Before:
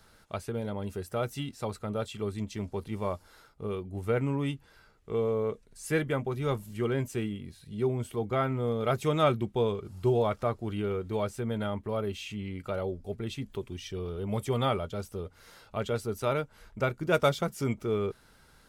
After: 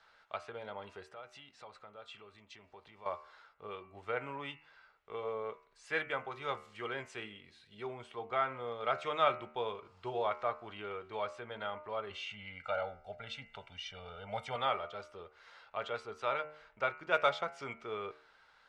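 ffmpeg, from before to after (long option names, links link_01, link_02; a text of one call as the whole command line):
ffmpeg -i in.wav -filter_complex "[0:a]asettb=1/sr,asplit=3[link_01][link_02][link_03];[link_01]atrim=end=1.034[link_04];[link_02]atrim=start=1.03:end=3.06,asetpts=PTS-STARTPTS,afade=type=in:duration=0.004:curve=qsin,afade=type=out:start_time=2.026:duration=0.004:curve=qsin,acompressor=threshold=-41dB:ratio=4:attack=3.2:release=140:knee=1:detection=peak[link_05];[link_03]atrim=start=3.056[link_06];[link_04][link_05]acrossfade=duration=0.004:curve1=hsin:curve2=qsin[link_07];[link_07][link_06]acrossfade=duration=0.004:curve1=qsin:curve2=hsin,asettb=1/sr,asplit=3[link_08][link_09][link_10];[link_08]atrim=end=5.934[link_11];[link_09]atrim=start=5.93:end=7.94,asetpts=PTS-STARTPTS,afade=type=in:duration=0.004:curve=qsin,afade=type=out:start_time=2.006:duration=0.004:curve=qsin,highshelf=frequency=5000:gain=6.5[link_12];[link_10]atrim=start=7.936[link_13];[link_11][link_12]acrossfade=duration=0.004:curve1=hsin:curve2=qsin[link_14];[link_14][link_13]acrossfade=duration=0.004:curve1=qsin:curve2=hsin,asettb=1/sr,asplit=3[link_15][link_16][link_17];[link_15]atrim=end=12.104[link_18];[link_16]atrim=start=12.1:end=14.56,asetpts=PTS-STARTPTS,afade=type=in:duration=0.004:curve=qsin,afade=type=out:start_time=2.456:duration=0.004:curve=qsin,aecho=1:1:1.4:0.99,atrim=end_sample=108486[link_19];[link_17]atrim=start=14.556[link_20];[link_18][link_19]acrossfade=duration=0.004:curve1=hsin:curve2=qsin[link_21];[link_21][link_20]acrossfade=duration=0.004:curve1=qsin:curve2=hsin,lowpass=frequency=8300:width=0.5412,lowpass=frequency=8300:width=1.3066,acrossover=split=600 3900:gain=0.0794 1 0.112[link_22][link_23][link_24];[link_22][link_23][link_24]amix=inputs=3:normalize=0,bandreject=frequency=76.01:width_type=h:width=4,bandreject=frequency=152.02:width_type=h:width=4,bandreject=frequency=228.03:width_type=h:width=4,bandreject=frequency=304.04:width_type=h:width=4,bandreject=frequency=380.05:width_type=h:width=4,bandreject=frequency=456.06:width_type=h:width=4,bandreject=frequency=532.07:width_type=h:width=4,bandreject=frequency=608.08:width_type=h:width=4,bandreject=frequency=684.09:width_type=h:width=4,bandreject=frequency=760.1:width_type=h:width=4,bandreject=frequency=836.11:width_type=h:width=4,bandreject=frequency=912.12:width_type=h:width=4,bandreject=frequency=988.13:width_type=h:width=4,bandreject=frequency=1064.14:width_type=h:width=4,bandreject=frequency=1140.15:width_type=h:width=4,bandreject=frequency=1216.16:width_type=h:width=4,bandreject=frequency=1292.17:width_type=h:width=4,bandreject=frequency=1368.18:width_type=h:width=4,bandreject=frequency=1444.19:width_type=h:width=4,bandreject=frequency=1520.2:width_type=h:width=4,bandreject=frequency=1596.21:width_type=h:width=4,bandreject=frequency=1672.22:width_type=h:width=4,bandreject=frequency=1748.23:width_type=h:width=4,bandreject=frequency=1824.24:width_type=h:width=4,bandreject=frequency=1900.25:width_type=h:width=4,bandreject=frequency=1976.26:width_type=h:width=4,bandreject=frequency=2052.27:width_type=h:width=4,bandreject=frequency=2128.28:width_type=h:width=4,bandreject=frequency=2204.29:width_type=h:width=4,bandreject=frequency=2280.3:width_type=h:width=4,bandreject=frequency=2356.31:width_type=h:width=4,bandreject=frequency=2432.32:width_type=h:width=4,bandreject=frequency=2508.33:width_type=h:width=4,bandreject=frequency=2584.34:width_type=h:width=4,bandreject=frequency=2660.35:width_type=h:width=4,bandreject=frequency=2736.36:width_type=h:width=4,bandreject=frequency=2812.37:width_type=h:width=4,bandreject=frequency=2888.38:width_type=h:width=4,bandreject=frequency=2964.39:width_type=h:width=4" out.wav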